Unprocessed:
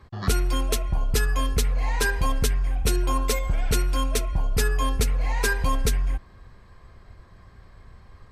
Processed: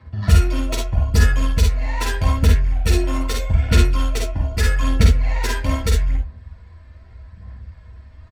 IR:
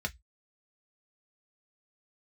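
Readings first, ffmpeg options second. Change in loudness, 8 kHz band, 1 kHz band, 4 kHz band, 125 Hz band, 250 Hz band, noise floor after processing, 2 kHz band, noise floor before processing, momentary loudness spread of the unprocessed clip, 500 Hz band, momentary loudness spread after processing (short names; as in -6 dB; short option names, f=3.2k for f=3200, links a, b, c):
+6.0 dB, -0.5 dB, +0.5 dB, +3.0 dB, +9.5 dB, +7.0 dB, -44 dBFS, +2.0 dB, -51 dBFS, 2 LU, +2.5 dB, 7 LU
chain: -filter_complex "[0:a]asplit=2[a][b];[b]acompressor=threshold=-35dB:ratio=6,volume=-2dB[c];[a][c]amix=inputs=2:normalize=0,aeval=exprs='0.316*(cos(1*acos(clip(val(0)/0.316,-1,1)))-cos(1*PI/2))+0.0708*(cos(3*acos(clip(val(0)/0.316,-1,1)))-cos(3*PI/2))':c=same,aphaser=in_gain=1:out_gain=1:delay=3.4:decay=0.48:speed=0.8:type=sinusoidal,aecho=1:1:48|60|73:0.631|0.473|0.266[d];[1:a]atrim=start_sample=2205,atrim=end_sample=3528[e];[d][e]afir=irnorm=-1:irlink=0,volume=-1dB"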